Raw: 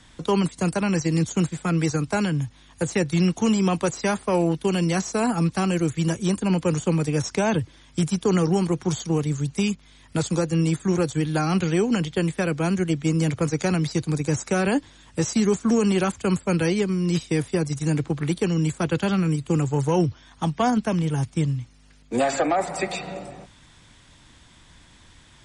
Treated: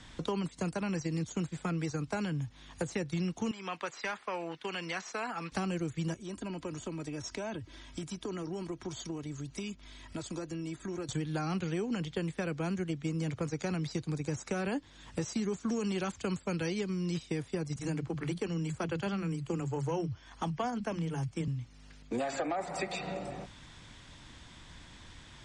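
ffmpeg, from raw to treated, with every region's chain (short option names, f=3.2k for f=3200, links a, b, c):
-filter_complex "[0:a]asettb=1/sr,asplit=3[a][b][c];[a]atrim=end=3.514[d];[b]atrim=start=3.51:end=5.52,asetpts=PTS-STARTPTS,afade=t=in:d=0.004:c=qsin,afade=t=out:st=2.006:d=0.004:c=qsin,bandpass=f=1.9k:t=q:w=0.9,aeval=exprs='0.0944*(abs(mod(val(0)/0.0944+3,4)-2)-1)':c=same[e];[c]atrim=start=5.516[f];[d][e]acrossfade=d=0.004:c1=hsin:c2=qsin[g];[g][f]acrossfade=d=0.004:c1=qsin:c2=hsin,asettb=1/sr,asplit=3[h][i][j];[h]atrim=end=6.144[k];[i]atrim=start=6.14:end=11.09,asetpts=PTS-STARTPTS,afade=t=in:d=0.004:c=qsin,afade=t=out:st=4.946:d=0.004:c=qsin,acompressor=threshold=-43dB:ratio=2:attack=3.2:release=140:knee=1:detection=peak,aecho=1:1:3.1:0.42,atrim=end_sample=218295[l];[j]atrim=start=11.086[m];[k][l]acrossfade=d=0.004:c1=hsin:c2=qsin[n];[n][m]acrossfade=d=0.004:c1=qsin:c2=hsin,asettb=1/sr,asplit=3[o][p][q];[o]atrim=end=15.584[r];[p]atrim=start=15.58:end=17.14,asetpts=PTS-STARTPTS,afade=t=in:d=0.004:c=qsin,afade=t=out:st=1.556:d=0.004:c=qsin,lowpass=6.6k,highshelf=f=4.7k:g=10.5[s];[q]atrim=start=17.136[t];[r][s]acrossfade=d=0.004:c1=hsin:c2=qsin[u];[u][t]acrossfade=d=0.004:c1=qsin:c2=hsin,asettb=1/sr,asplit=3[v][w][x];[v]atrim=end=17.764[y];[w]atrim=start=17.76:end=21.48,asetpts=PTS-STARTPTS,afade=t=in:d=0.004:c=qsin,afade=t=out:st=3.716:d=0.004:c=qsin,bandreject=f=3.7k:w=9.5,acrossover=split=190[z][aa];[z]adelay=30[ab];[ab][aa]amix=inputs=2:normalize=0,atrim=end_sample=164052[ac];[x]atrim=start=21.476[ad];[y][ac]acrossfade=d=0.004:c1=hsin:c2=qsin[ae];[ae][ad]acrossfade=d=0.004:c1=qsin:c2=hsin,lowpass=7.2k,acompressor=threshold=-35dB:ratio=3"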